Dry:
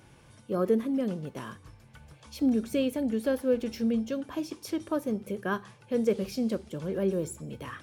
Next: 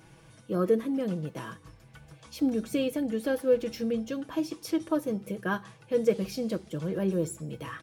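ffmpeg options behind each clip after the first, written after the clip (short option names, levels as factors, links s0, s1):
-af "aecho=1:1:6.2:0.54"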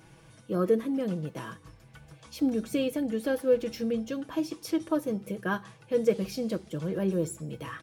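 -af anull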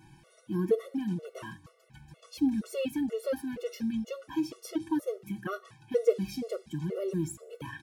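-af "afftfilt=real='re*gt(sin(2*PI*2.1*pts/sr)*(1-2*mod(floor(b*sr/1024/370),2)),0)':imag='im*gt(sin(2*PI*2.1*pts/sr)*(1-2*mod(floor(b*sr/1024/370),2)),0)':win_size=1024:overlap=0.75"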